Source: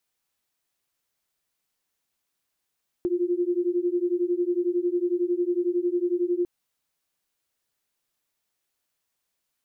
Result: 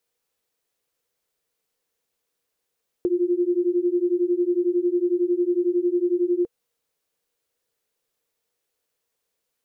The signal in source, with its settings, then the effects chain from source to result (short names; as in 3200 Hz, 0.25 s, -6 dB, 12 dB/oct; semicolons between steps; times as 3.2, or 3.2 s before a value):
beating tones 347 Hz, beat 11 Hz, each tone -25 dBFS 3.40 s
bell 470 Hz +13.5 dB 0.42 oct